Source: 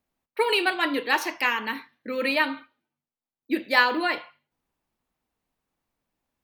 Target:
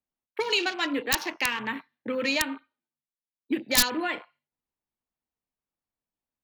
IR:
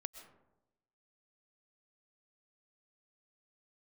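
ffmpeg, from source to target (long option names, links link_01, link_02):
-filter_complex "[0:a]afwtdn=0.0178,aeval=exprs='(mod(2.99*val(0)+1,2)-1)/2.99':channel_layout=same,acrossover=split=230|3000[link_01][link_02][link_03];[link_02]acompressor=threshold=-31dB:ratio=6[link_04];[link_01][link_04][link_03]amix=inputs=3:normalize=0,volume=3dB"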